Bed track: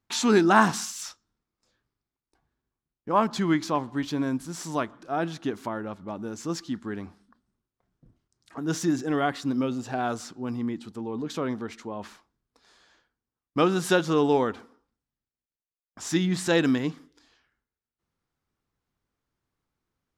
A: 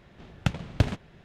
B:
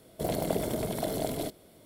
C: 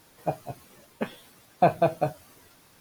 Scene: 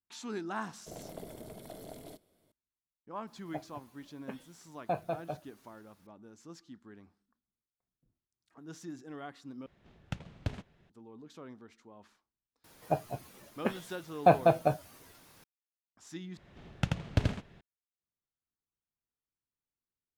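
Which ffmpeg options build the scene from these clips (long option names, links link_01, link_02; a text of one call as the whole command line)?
ffmpeg -i bed.wav -i cue0.wav -i cue1.wav -i cue2.wav -filter_complex "[3:a]asplit=2[link_01][link_02];[1:a]asplit=2[link_03][link_04];[0:a]volume=-19dB[link_05];[2:a]aeval=exprs='if(lt(val(0),0),0.708*val(0),val(0))':channel_layout=same[link_06];[link_04]aecho=1:1:83:0.668[link_07];[link_05]asplit=3[link_08][link_09][link_10];[link_08]atrim=end=9.664[link_11];[link_03]atrim=end=1.24,asetpts=PTS-STARTPTS,volume=-12.5dB[link_12];[link_09]atrim=start=10.896:end=16.374[link_13];[link_07]atrim=end=1.24,asetpts=PTS-STARTPTS,volume=-5.5dB[link_14];[link_10]atrim=start=17.606[link_15];[link_06]atrim=end=1.85,asetpts=PTS-STARTPTS,volume=-14.5dB,afade=type=in:duration=0.004:curve=hsin,afade=type=out:start_time=1.846:duration=0.004:curve=hsin,adelay=670[link_16];[link_01]atrim=end=2.8,asetpts=PTS-STARTPTS,volume=-13dB,afade=type=in:duration=0.004:curve=hsin,afade=type=out:start_time=2.796:duration=0.004:curve=hsin,adelay=3270[link_17];[link_02]atrim=end=2.8,asetpts=PTS-STARTPTS,volume=-1.5dB,afade=type=in:duration=0.004:curve=hsin,afade=type=out:start_time=2.796:duration=0.004:curve=hsin,adelay=12640[link_18];[link_11][link_12]acrossfade=duration=0.004:curve1=hsin:curve2=hsin[link_19];[link_19][link_13]acrossfade=duration=0.004:curve1=hsin:curve2=hsin[link_20];[link_20][link_14]acrossfade=duration=0.004:curve1=hsin:curve2=hsin[link_21];[link_21][link_15]acrossfade=duration=0.004:curve1=hsin:curve2=hsin[link_22];[link_22][link_16][link_17][link_18]amix=inputs=4:normalize=0" out.wav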